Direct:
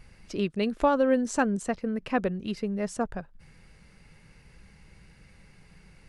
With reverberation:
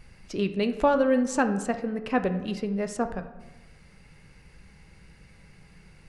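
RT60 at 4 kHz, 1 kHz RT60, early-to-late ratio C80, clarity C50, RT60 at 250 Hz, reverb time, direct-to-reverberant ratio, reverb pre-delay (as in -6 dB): 0.65 s, 1.1 s, 13.0 dB, 10.5 dB, 1.2 s, 1.1 s, 8.0 dB, 9 ms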